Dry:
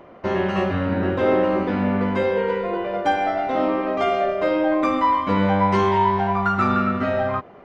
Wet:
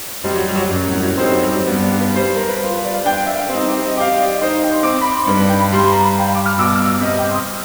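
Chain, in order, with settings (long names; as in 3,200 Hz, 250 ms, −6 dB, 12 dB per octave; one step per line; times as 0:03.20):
convolution reverb RT60 3.2 s, pre-delay 4 ms, DRR 4 dB
background noise white −31 dBFS
level +3 dB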